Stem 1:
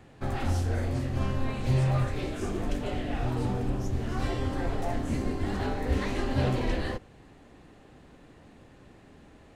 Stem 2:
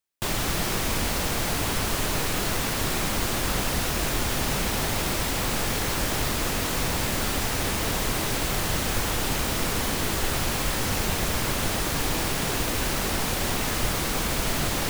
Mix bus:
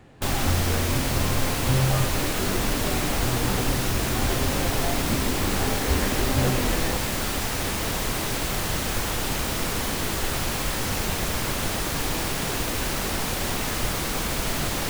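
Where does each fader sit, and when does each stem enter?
+2.5 dB, -0.5 dB; 0.00 s, 0.00 s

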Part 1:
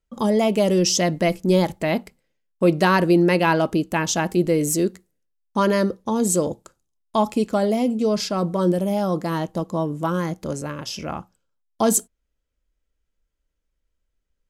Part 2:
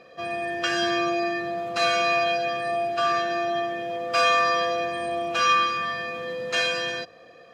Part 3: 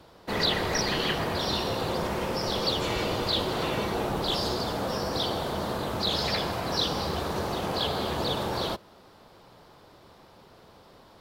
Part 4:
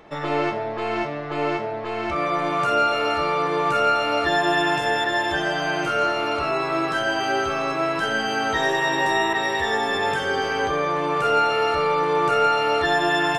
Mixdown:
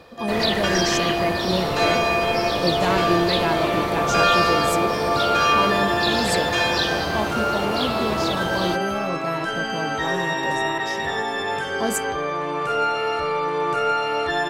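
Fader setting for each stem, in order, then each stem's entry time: -7.0 dB, +0.5 dB, +2.5 dB, -2.5 dB; 0.00 s, 0.00 s, 0.00 s, 1.45 s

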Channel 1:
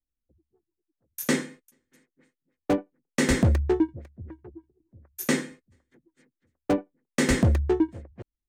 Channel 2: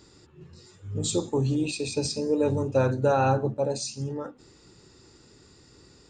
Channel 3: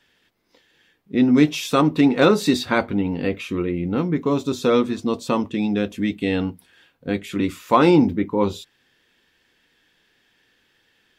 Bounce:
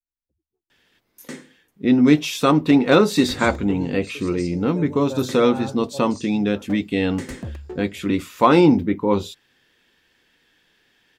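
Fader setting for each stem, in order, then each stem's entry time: -11.5 dB, -9.5 dB, +1.0 dB; 0.00 s, 2.35 s, 0.70 s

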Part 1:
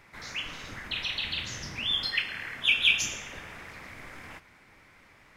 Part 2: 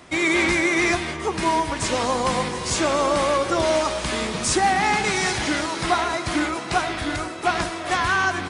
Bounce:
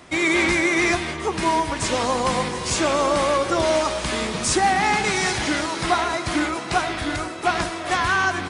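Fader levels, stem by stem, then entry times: -17.5 dB, +0.5 dB; 0.00 s, 0.00 s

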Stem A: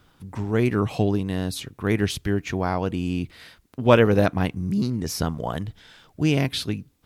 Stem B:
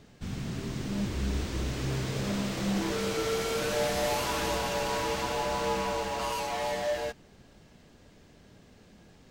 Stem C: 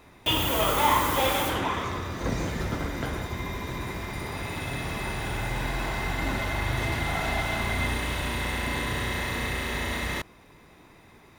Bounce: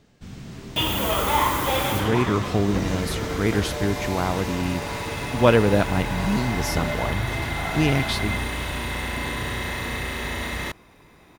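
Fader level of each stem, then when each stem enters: -0.5 dB, -3.0 dB, +1.0 dB; 1.55 s, 0.00 s, 0.50 s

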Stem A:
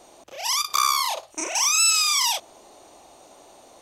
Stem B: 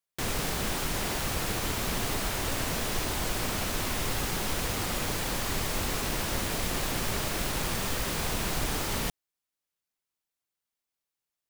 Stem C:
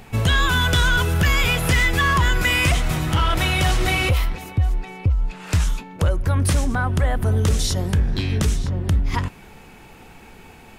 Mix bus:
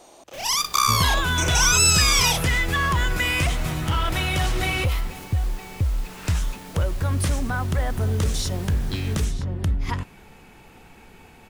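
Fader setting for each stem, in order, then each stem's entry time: +1.0 dB, -12.0 dB, -4.0 dB; 0.00 s, 0.15 s, 0.75 s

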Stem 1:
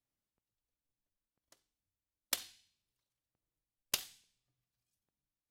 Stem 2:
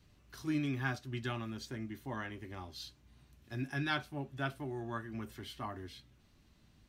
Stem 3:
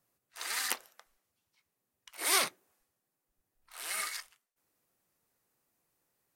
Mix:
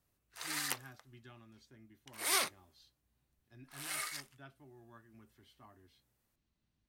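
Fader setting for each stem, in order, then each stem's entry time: -18.5 dB, -18.0 dB, -4.0 dB; 0.00 s, 0.00 s, 0.00 s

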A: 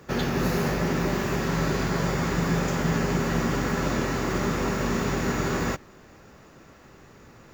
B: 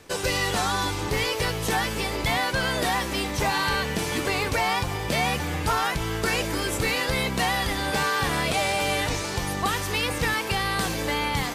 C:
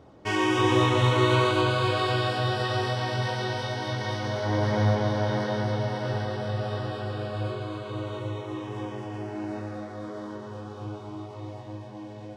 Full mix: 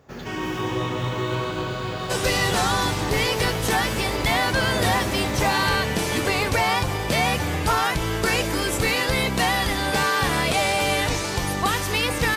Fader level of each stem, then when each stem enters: -10.0 dB, +3.0 dB, -5.0 dB; 0.00 s, 2.00 s, 0.00 s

